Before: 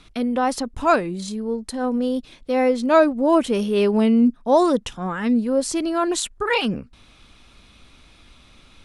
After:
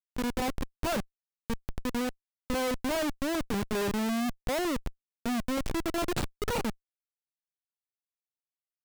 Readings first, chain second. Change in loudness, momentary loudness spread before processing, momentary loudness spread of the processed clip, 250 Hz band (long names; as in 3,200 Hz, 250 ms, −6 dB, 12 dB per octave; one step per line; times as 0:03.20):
−11.5 dB, 10 LU, 8 LU, −12.0 dB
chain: comparator with hysteresis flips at −19 dBFS
level −7.5 dB